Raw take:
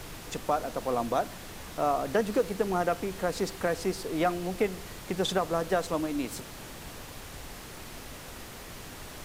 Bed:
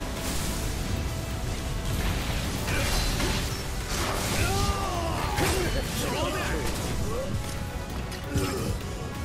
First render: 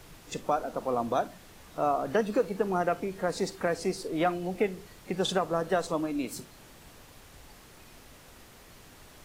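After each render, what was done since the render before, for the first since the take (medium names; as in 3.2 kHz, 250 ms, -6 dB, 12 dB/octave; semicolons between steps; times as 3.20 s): noise print and reduce 9 dB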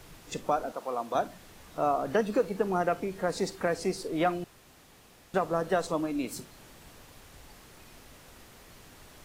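0.72–1.15 s: high-pass 690 Hz 6 dB/octave; 4.44–5.34 s: room tone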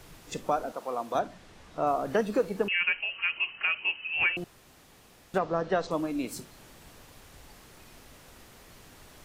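1.19–1.87 s: distance through air 56 m; 2.68–4.37 s: frequency inversion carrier 3 kHz; 5.38–5.91 s: low-pass 5.6 kHz 24 dB/octave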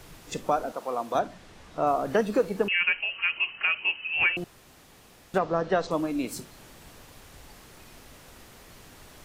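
trim +2.5 dB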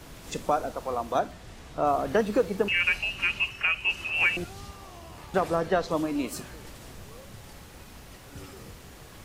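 add bed -17 dB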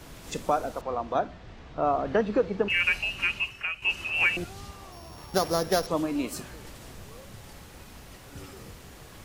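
0.81–2.70 s: distance through air 160 m; 3.22–3.82 s: fade out linear, to -9.5 dB; 4.92–5.87 s: sorted samples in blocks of 8 samples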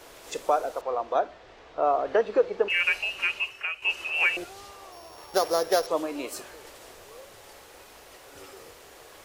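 resonant low shelf 290 Hz -14 dB, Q 1.5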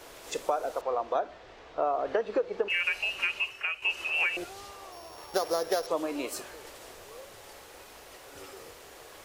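compression 6:1, threshold -24 dBFS, peak gain reduction 8.5 dB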